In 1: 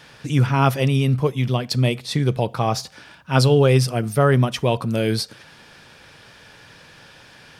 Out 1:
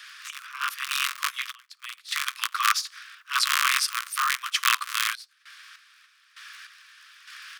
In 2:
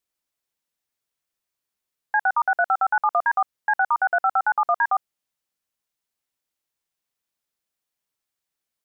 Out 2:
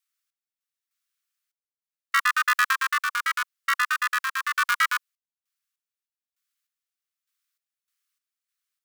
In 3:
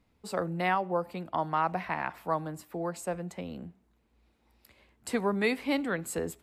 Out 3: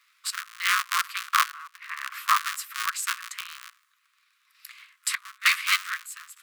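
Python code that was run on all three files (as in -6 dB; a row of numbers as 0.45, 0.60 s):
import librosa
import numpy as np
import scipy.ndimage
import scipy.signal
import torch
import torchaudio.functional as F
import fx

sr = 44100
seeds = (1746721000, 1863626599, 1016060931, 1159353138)

y = fx.cycle_switch(x, sr, every=3, mode='inverted')
y = scipy.signal.sosfilt(scipy.signal.butter(16, 1100.0, 'highpass', fs=sr, output='sos'), y)
y = fx.tremolo_random(y, sr, seeds[0], hz=3.3, depth_pct=95)
y = y * 10.0 ** (-30 / 20.0) / np.sqrt(np.mean(np.square(y)))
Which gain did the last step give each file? +4.5, +3.5, +16.0 dB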